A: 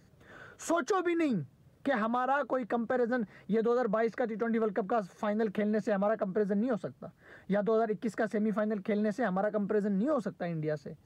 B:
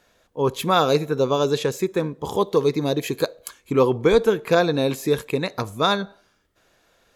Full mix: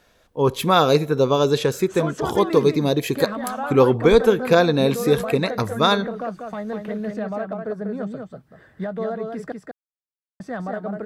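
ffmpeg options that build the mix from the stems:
ffmpeg -i stem1.wav -i stem2.wav -filter_complex "[0:a]adelay=1300,volume=0.5dB,asplit=3[link_01][link_02][link_03];[link_01]atrim=end=9.52,asetpts=PTS-STARTPTS,afade=type=out:start_time=9.516:duration=0.004:curve=hsin[link_04];[link_02]atrim=start=9.52:end=10.4,asetpts=PTS-STARTPTS,volume=0[link_05];[link_03]atrim=start=10.4,asetpts=PTS-STARTPTS,afade=type=in:duration=0.004:curve=hsin[link_06];[link_04][link_05][link_06]concat=n=3:v=0:a=1,asplit=2[link_07][link_08];[link_08]volume=-5dB[link_09];[1:a]volume=2dB[link_10];[link_09]aecho=0:1:194:1[link_11];[link_07][link_10][link_11]amix=inputs=3:normalize=0,lowshelf=frequency=120:gain=4.5,bandreject=frequency=6800:width=14" out.wav

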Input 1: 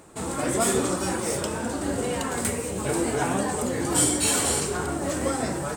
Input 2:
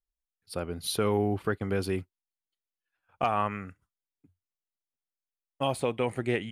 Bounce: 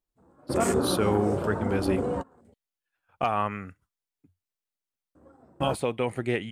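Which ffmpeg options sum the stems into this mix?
ffmpeg -i stem1.wav -i stem2.wav -filter_complex "[0:a]afwtdn=0.0316,lowpass=frequency=4000:poles=1,volume=-0.5dB,asplit=3[link_01][link_02][link_03];[link_01]atrim=end=2.54,asetpts=PTS-STARTPTS,afade=type=out:start_time=2.536:duration=0.004:curve=hsin[link_04];[link_02]atrim=start=2.54:end=5.15,asetpts=PTS-STARTPTS,volume=0[link_05];[link_03]atrim=start=5.15,asetpts=PTS-STARTPTS,afade=type=in:duration=0.004:curve=hsin[link_06];[link_04][link_05][link_06]concat=n=3:v=0:a=1[link_07];[1:a]volume=1dB,asplit=2[link_08][link_09];[link_09]apad=whole_len=254131[link_10];[link_07][link_10]sidechaingate=range=-28dB:threshold=-57dB:ratio=16:detection=peak[link_11];[link_11][link_08]amix=inputs=2:normalize=0" out.wav

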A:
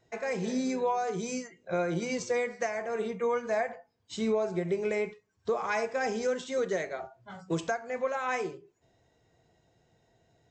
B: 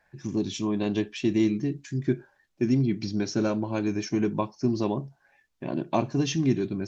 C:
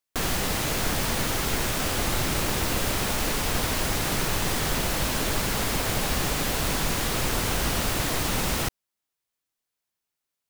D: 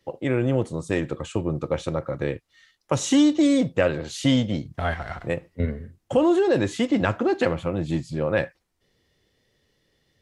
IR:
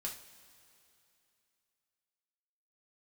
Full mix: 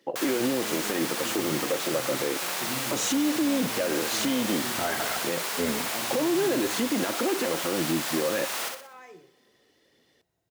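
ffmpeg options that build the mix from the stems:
-filter_complex "[0:a]acompressor=threshold=-32dB:ratio=6,adelay=700,volume=-14.5dB,asplit=2[link_01][link_02];[link_02]volume=-4.5dB[link_03];[1:a]volume=-15dB,asplit=2[link_04][link_05];[link_05]volume=-5dB[link_06];[2:a]highpass=640,acontrast=39,volume=-9.5dB,asplit=3[link_07][link_08][link_09];[link_08]volume=-17dB[link_10];[link_09]volume=-4dB[link_11];[3:a]aphaser=in_gain=1:out_gain=1:delay=3.4:decay=0.34:speed=1.9:type=triangular,lowshelf=frequency=170:width_type=q:width=1.5:gain=-13.5,acompressor=threshold=-22dB:ratio=2.5,volume=3dB,asplit=2[link_12][link_13];[link_13]apad=whole_len=462945[link_14];[link_07][link_14]sidechaincompress=threshold=-22dB:ratio=8:attack=16:release=276[link_15];[link_04][link_12]amix=inputs=2:normalize=0,highpass=110,alimiter=limit=-19.5dB:level=0:latency=1:release=20,volume=0dB[link_16];[4:a]atrim=start_sample=2205[link_17];[link_03][link_10]amix=inputs=2:normalize=0[link_18];[link_18][link_17]afir=irnorm=-1:irlink=0[link_19];[link_06][link_11]amix=inputs=2:normalize=0,aecho=0:1:61|122|183|244|305|366:1|0.4|0.16|0.064|0.0256|0.0102[link_20];[link_01][link_15][link_16][link_19][link_20]amix=inputs=5:normalize=0"

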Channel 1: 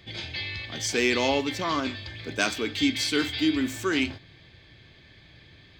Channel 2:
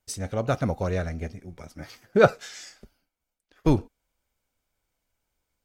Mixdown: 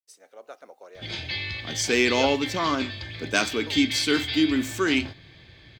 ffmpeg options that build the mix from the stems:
ffmpeg -i stem1.wav -i stem2.wav -filter_complex "[0:a]adelay=950,volume=2.5dB[link_01];[1:a]highpass=frequency=390:width=0.5412,highpass=frequency=390:width=1.3066,acrusher=bits=9:mix=0:aa=0.000001,volume=-16dB[link_02];[link_01][link_02]amix=inputs=2:normalize=0" out.wav

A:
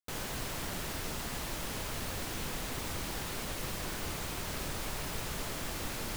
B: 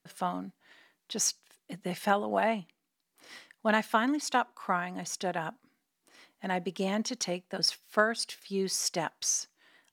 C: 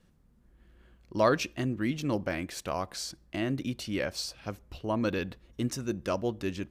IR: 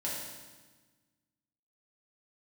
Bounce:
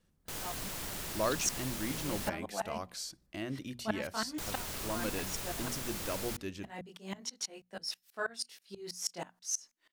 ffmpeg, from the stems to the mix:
-filter_complex "[0:a]adelay=200,volume=-4.5dB,asplit=3[link_01][link_02][link_03];[link_01]atrim=end=2.29,asetpts=PTS-STARTPTS,afade=type=out:start_time=2.286:duration=0.004:curve=hsin[link_04];[link_02]atrim=start=2.29:end=4.38,asetpts=PTS-STARTPTS,volume=0[link_05];[link_03]atrim=start=4.38,asetpts=PTS-STARTPTS,afade=type=in:duration=0.004:curve=hsin[link_06];[link_04][link_05][link_06]concat=n=3:v=0:a=1[link_07];[1:a]flanger=delay=19.5:depth=4:speed=0.4,aeval=exprs='val(0)*pow(10,-25*if(lt(mod(-6.2*n/s,1),2*abs(-6.2)/1000),1-mod(-6.2*n/s,1)/(2*abs(-6.2)/1000),(mod(-6.2*n/s,1)-2*abs(-6.2)/1000)/(1-2*abs(-6.2)/1000))/20)':channel_layout=same,adelay=200,volume=-1.5dB[link_08];[2:a]volume=-8dB[link_09];[link_07][link_08][link_09]amix=inputs=3:normalize=0,highshelf=frequency=4400:gain=6.5,bandreject=frequency=60:width_type=h:width=6,bandreject=frequency=120:width_type=h:width=6,bandreject=frequency=180:width_type=h:width=6,bandreject=frequency=240:width_type=h:width=6"

